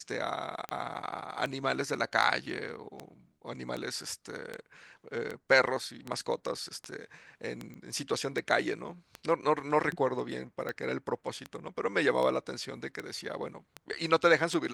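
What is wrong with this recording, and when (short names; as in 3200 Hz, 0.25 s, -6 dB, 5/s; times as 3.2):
tick 78 rpm -22 dBFS
7.74 pop -34 dBFS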